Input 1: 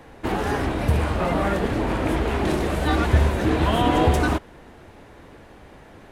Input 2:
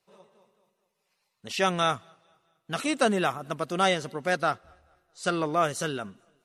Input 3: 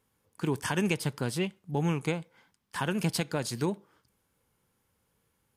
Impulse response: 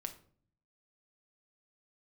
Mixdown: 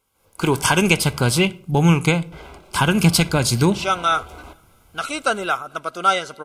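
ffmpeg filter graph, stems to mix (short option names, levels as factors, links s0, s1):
-filter_complex "[0:a]asoftclip=type=tanh:threshold=0.112,adelay=150,volume=0.188,asplit=3[s0][s1][s2];[s0]atrim=end=1.41,asetpts=PTS-STARTPTS,afade=t=out:st=1.406:d=0.004:c=hsin[s3];[s1]atrim=start=1.41:end=2.32,asetpts=PTS-STARTPTS,volume=0[s4];[s2]atrim=start=2.32,asetpts=PTS-STARTPTS,afade=t=in:d=0.004:c=hsin[s5];[s3][s4][s5]concat=n=3:v=0:a=1,asplit=2[s6][s7];[s7]volume=0.562[s8];[1:a]equalizer=f=1400:w=6.3:g=9.5,adelay=2250,volume=1.26,asplit=2[s9][s10];[s10]volume=0.282[s11];[2:a]asubboost=boost=5:cutoff=230,dynaudnorm=f=140:g=3:m=3.98,volume=1.19,asplit=3[s12][s13][s14];[s13]volume=0.668[s15];[s14]apad=whole_len=276175[s16];[s6][s16]sidechaingate=range=0.0224:threshold=0.002:ratio=16:detection=peak[s17];[3:a]atrim=start_sample=2205[s18];[s8][s11][s15]amix=inputs=3:normalize=0[s19];[s19][s18]afir=irnorm=-1:irlink=0[s20];[s17][s9][s12][s20]amix=inputs=4:normalize=0,asuperstop=centerf=1800:order=20:qfactor=6,equalizer=f=170:w=0.63:g=-10.5"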